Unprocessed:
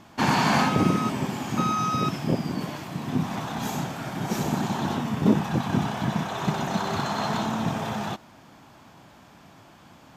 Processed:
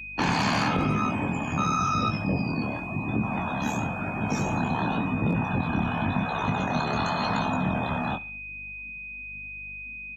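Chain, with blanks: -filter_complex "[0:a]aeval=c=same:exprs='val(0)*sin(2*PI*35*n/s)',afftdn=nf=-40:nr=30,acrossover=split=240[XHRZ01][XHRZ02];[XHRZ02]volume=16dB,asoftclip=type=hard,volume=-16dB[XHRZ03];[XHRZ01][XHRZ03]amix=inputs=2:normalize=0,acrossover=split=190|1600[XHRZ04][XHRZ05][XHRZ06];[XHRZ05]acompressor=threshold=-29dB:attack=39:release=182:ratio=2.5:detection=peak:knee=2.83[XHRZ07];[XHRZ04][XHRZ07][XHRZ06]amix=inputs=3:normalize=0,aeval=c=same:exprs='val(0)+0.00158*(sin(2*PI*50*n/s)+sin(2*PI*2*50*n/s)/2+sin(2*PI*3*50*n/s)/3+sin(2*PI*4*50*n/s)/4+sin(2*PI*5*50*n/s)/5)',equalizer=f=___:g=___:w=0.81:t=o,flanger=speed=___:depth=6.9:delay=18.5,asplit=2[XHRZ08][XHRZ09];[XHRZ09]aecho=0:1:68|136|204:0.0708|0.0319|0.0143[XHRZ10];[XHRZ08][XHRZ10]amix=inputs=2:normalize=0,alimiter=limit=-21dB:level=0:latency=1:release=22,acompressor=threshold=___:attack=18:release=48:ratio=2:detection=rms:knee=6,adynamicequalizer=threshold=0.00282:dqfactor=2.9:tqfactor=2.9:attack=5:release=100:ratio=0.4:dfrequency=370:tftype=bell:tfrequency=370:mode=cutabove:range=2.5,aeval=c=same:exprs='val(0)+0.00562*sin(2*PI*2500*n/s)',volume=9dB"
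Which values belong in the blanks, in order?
9500, 10.5, 0.94, -34dB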